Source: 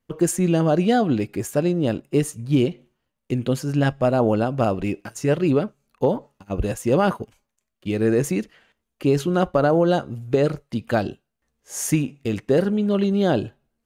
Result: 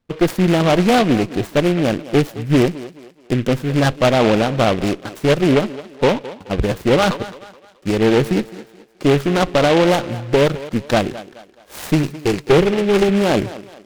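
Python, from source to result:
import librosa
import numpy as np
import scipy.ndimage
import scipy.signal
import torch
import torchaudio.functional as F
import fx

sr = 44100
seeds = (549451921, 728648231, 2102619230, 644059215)

y = scipy.signal.medfilt(x, 9)
y = fx.ripple_eq(y, sr, per_octave=0.73, db=12, at=(12.03, 13.09))
y = fx.tube_stage(y, sr, drive_db=16.0, bias=0.65)
y = fx.echo_thinned(y, sr, ms=213, feedback_pct=41, hz=250.0, wet_db=-15.0)
y = fx.noise_mod_delay(y, sr, seeds[0], noise_hz=2000.0, depth_ms=0.075)
y = y * librosa.db_to_amplitude(9.0)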